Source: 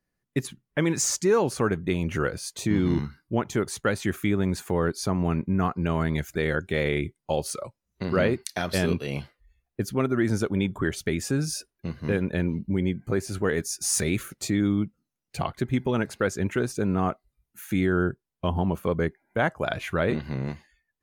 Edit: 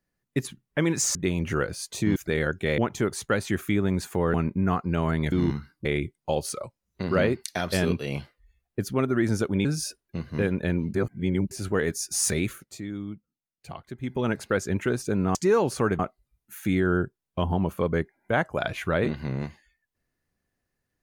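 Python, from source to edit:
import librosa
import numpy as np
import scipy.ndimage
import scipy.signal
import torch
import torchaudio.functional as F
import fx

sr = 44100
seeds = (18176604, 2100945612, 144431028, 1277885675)

y = fx.edit(x, sr, fx.move(start_s=1.15, length_s=0.64, to_s=17.05),
    fx.swap(start_s=2.8, length_s=0.53, other_s=6.24, other_length_s=0.62),
    fx.cut(start_s=4.89, length_s=0.37),
    fx.cut(start_s=10.66, length_s=0.69),
    fx.reverse_span(start_s=12.64, length_s=0.57),
    fx.fade_down_up(start_s=13.99, length_s=2.09, db=-11.0, fade_s=0.38, curve='qsin'), tone=tone)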